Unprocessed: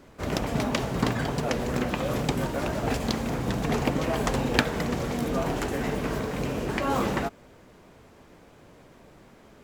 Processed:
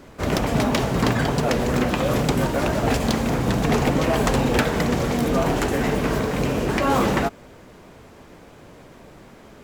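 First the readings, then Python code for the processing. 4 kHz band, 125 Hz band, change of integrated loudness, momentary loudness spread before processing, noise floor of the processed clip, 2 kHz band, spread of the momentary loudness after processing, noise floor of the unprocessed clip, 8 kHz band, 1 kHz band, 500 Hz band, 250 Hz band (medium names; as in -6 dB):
+5.0 dB, +6.5 dB, +6.5 dB, 4 LU, -46 dBFS, +5.5 dB, 3 LU, -53 dBFS, +6.5 dB, +6.5 dB, +6.5 dB, +6.5 dB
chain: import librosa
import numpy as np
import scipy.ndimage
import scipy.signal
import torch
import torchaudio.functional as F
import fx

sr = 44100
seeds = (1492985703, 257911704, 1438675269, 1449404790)

y = np.clip(x, -10.0 ** (-20.0 / 20.0), 10.0 ** (-20.0 / 20.0))
y = y * librosa.db_to_amplitude(7.0)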